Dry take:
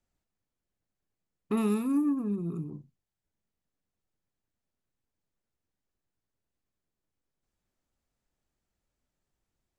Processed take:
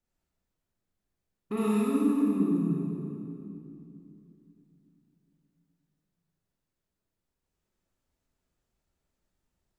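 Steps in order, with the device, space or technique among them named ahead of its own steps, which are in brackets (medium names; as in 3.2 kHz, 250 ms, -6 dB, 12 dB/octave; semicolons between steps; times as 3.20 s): stairwell (reverberation RT60 2.9 s, pre-delay 27 ms, DRR -6 dB); trim -4.5 dB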